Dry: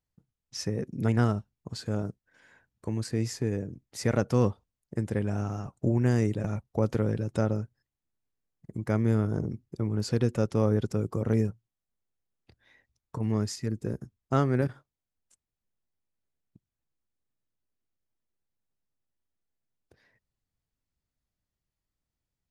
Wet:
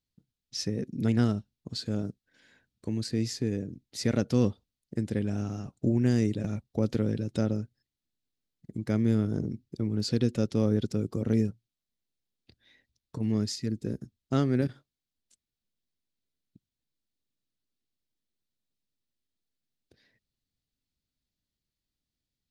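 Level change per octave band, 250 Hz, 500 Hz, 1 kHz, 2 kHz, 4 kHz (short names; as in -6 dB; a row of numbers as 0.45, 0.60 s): +2.0, -2.5, -7.0, -3.5, +4.0 dB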